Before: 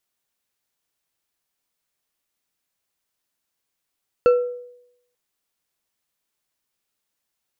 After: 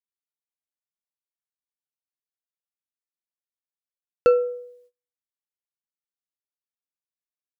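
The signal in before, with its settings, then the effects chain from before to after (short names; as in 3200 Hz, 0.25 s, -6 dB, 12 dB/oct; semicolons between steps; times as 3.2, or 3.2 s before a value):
glass hit bar, lowest mode 490 Hz, decay 0.78 s, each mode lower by 11 dB, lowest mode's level -9 dB
gate -56 dBFS, range -28 dB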